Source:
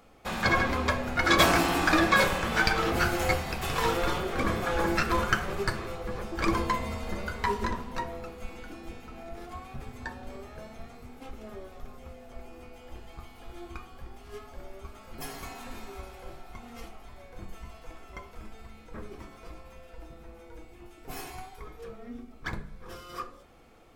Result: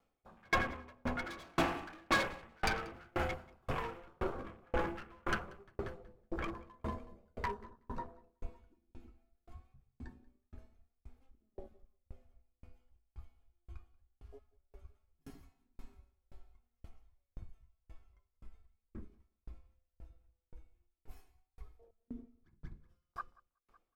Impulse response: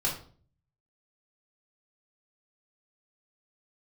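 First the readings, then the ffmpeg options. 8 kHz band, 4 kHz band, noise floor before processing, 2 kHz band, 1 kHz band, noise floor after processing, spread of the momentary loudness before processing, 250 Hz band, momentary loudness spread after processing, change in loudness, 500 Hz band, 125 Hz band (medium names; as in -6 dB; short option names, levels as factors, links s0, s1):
-16.0 dB, -14.5 dB, -51 dBFS, -12.5 dB, -12.0 dB, under -85 dBFS, 23 LU, -12.5 dB, 23 LU, -12.0 dB, -11.5 dB, -12.0 dB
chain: -filter_complex "[0:a]afwtdn=0.0251,asoftclip=type=hard:threshold=0.0794,asplit=2[s0][s1];[s1]aecho=0:1:186|372|558|744|930:0.299|0.146|0.0717|0.0351|0.0172[s2];[s0][s2]amix=inputs=2:normalize=0,aeval=exprs='val(0)*pow(10,-39*if(lt(mod(1.9*n/s,1),2*abs(1.9)/1000),1-mod(1.9*n/s,1)/(2*abs(1.9)/1000),(mod(1.9*n/s,1)-2*abs(1.9)/1000)/(1-2*abs(1.9)/1000))/20)':c=same,volume=0.891"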